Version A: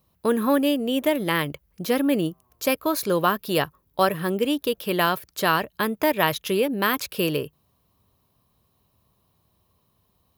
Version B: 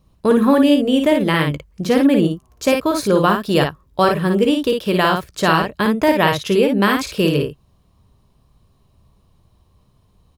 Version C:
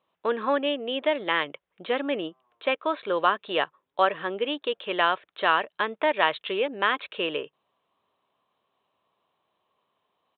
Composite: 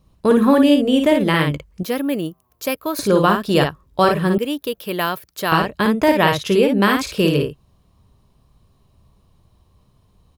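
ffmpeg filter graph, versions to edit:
-filter_complex "[0:a]asplit=2[a][b];[1:a]asplit=3[c][d][e];[c]atrim=end=1.832[f];[a]atrim=start=1.828:end=2.992[g];[d]atrim=start=2.988:end=4.382[h];[b]atrim=start=4.378:end=5.522[i];[e]atrim=start=5.518[j];[f][g]acrossfade=d=0.004:c1=hsin:c2=hsin[k];[k][h]acrossfade=d=0.004:c1=hsin:c2=hsin[l];[l][i]acrossfade=d=0.004:c1=hsin:c2=hsin[m];[m][j]acrossfade=d=0.004:c1=hsin:c2=hsin"

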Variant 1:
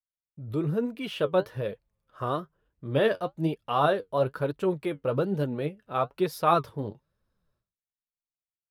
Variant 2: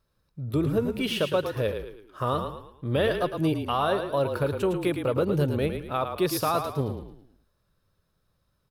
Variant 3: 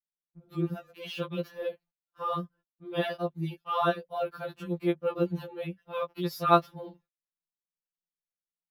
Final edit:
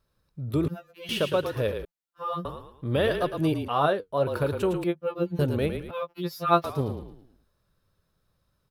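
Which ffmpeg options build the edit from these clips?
-filter_complex "[2:a]asplit=4[a][b][c][d];[1:a]asplit=6[e][f][g][h][i][j];[e]atrim=end=0.682[k];[a]atrim=start=0.678:end=1.092[l];[f]atrim=start=1.088:end=1.852[m];[b]atrim=start=1.848:end=2.452[n];[g]atrim=start=2.448:end=3.682[o];[0:a]atrim=start=3.678:end=4.272[p];[h]atrim=start=4.268:end=4.842[q];[c]atrim=start=4.838:end=5.392[r];[i]atrim=start=5.388:end=5.912[s];[d]atrim=start=5.908:end=6.642[t];[j]atrim=start=6.638[u];[k][l]acrossfade=d=0.004:c1=hsin:c2=hsin[v];[v][m]acrossfade=d=0.004:c1=hsin:c2=hsin[w];[w][n]acrossfade=d=0.004:c1=hsin:c2=hsin[x];[x][o]acrossfade=d=0.004:c1=hsin:c2=hsin[y];[y][p]acrossfade=d=0.004:c1=hsin:c2=hsin[z];[z][q]acrossfade=d=0.004:c1=hsin:c2=hsin[aa];[aa][r]acrossfade=d=0.004:c1=hsin:c2=hsin[ab];[ab][s]acrossfade=d=0.004:c1=hsin:c2=hsin[ac];[ac][t]acrossfade=d=0.004:c1=hsin:c2=hsin[ad];[ad][u]acrossfade=d=0.004:c1=hsin:c2=hsin"

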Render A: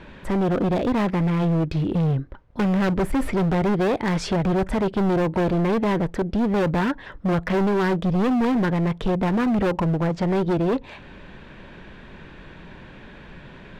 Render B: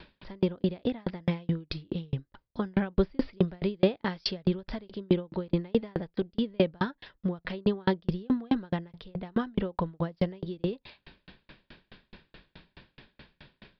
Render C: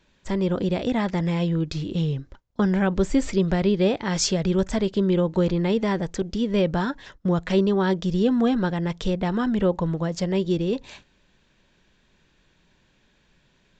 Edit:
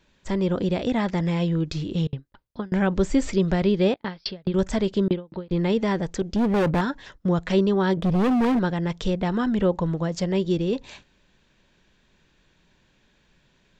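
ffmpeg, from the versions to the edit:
-filter_complex "[1:a]asplit=3[a][b][c];[0:a]asplit=2[d][e];[2:a]asplit=6[f][g][h][i][j][k];[f]atrim=end=2.072[l];[a]atrim=start=2.068:end=2.722[m];[g]atrim=start=2.718:end=3.942[n];[b]atrim=start=3.938:end=4.542[o];[h]atrim=start=4.538:end=5.082[p];[c]atrim=start=5.078:end=5.512[q];[i]atrim=start=5.508:end=6.362[r];[d]atrim=start=6.358:end=6.812[s];[j]atrim=start=6.808:end=7.972[t];[e]atrim=start=7.968:end=8.592[u];[k]atrim=start=8.588[v];[l][m]acrossfade=d=0.004:c1=hsin:c2=hsin[w];[w][n]acrossfade=d=0.004:c1=hsin:c2=hsin[x];[x][o]acrossfade=d=0.004:c1=hsin:c2=hsin[y];[y][p]acrossfade=d=0.004:c1=hsin:c2=hsin[z];[z][q]acrossfade=d=0.004:c1=hsin:c2=hsin[aa];[aa][r]acrossfade=d=0.004:c1=hsin:c2=hsin[ab];[ab][s]acrossfade=d=0.004:c1=hsin:c2=hsin[ac];[ac][t]acrossfade=d=0.004:c1=hsin:c2=hsin[ad];[ad][u]acrossfade=d=0.004:c1=hsin:c2=hsin[ae];[ae][v]acrossfade=d=0.004:c1=hsin:c2=hsin"

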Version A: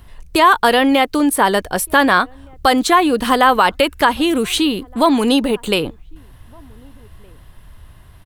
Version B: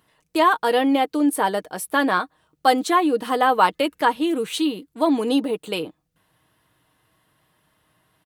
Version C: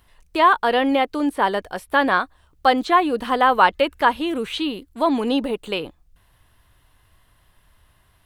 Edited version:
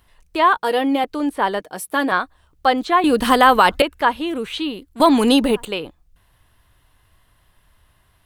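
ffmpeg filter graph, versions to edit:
-filter_complex "[1:a]asplit=2[a][b];[0:a]asplit=2[c][d];[2:a]asplit=5[e][f][g][h][i];[e]atrim=end=0.572[j];[a]atrim=start=0.568:end=1.042[k];[f]atrim=start=1.038:end=1.602[l];[b]atrim=start=1.598:end=2.122[m];[g]atrim=start=2.118:end=3.042[n];[c]atrim=start=3.038:end=3.822[o];[h]atrim=start=3.818:end=5.002[p];[d]atrim=start=4.998:end=5.652[q];[i]atrim=start=5.648[r];[j][k]acrossfade=d=0.004:c1=hsin:c2=hsin[s];[s][l]acrossfade=d=0.004:c1=hsin:c2=hsin[t];[t][m]acrossfade=d=0.004:c1=hsin:c2=hsin[u];[u][n]acrossfade=d=0.004:c1=hsin:c2=hsin[v];[v][o]acrossfade=d=0.004:c1=hsin:c2=hsin[w];[w][p]acrossfade=d=0.004:c1=hsin:c2=hsin[x];[x][q]acrossfade=d=0.004:c1=hsin:c2=hsin[y];[y][r]acrossfade=d=0.004:c1=hsin:c2=hsin"

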